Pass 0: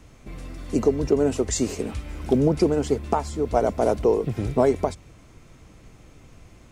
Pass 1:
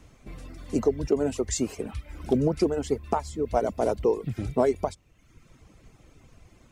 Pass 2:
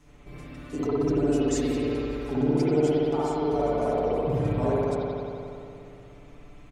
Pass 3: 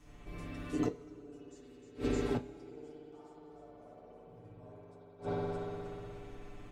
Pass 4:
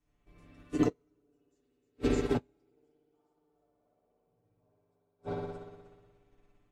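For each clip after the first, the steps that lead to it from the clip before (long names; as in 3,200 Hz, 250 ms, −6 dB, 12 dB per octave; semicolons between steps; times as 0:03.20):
reverb reduction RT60 0.86 s; level −3 dB
comb filter 6.9 ms, depth 92%; brickwall limiter −17.5 dBFS, peak gain reduction 11 dB; spring reverb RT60 2.8 s, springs 59 ms, chirp 35 ms, DRR −9 dB; level −6.5 dB
feedback echo with a high-pass in the loop 308 ms, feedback 39%, high-pass 180 Hz, level −7 dB; gate with flip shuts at −18 dBFS, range −27 dB; coupled-rooms reverb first 0.2 s, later 2.3 s, from −21 dB, DRR 5.5 dB; level −3.5 dB
expander for the loud parts 2.5 to 1, over −48 dBFS; level +8 dB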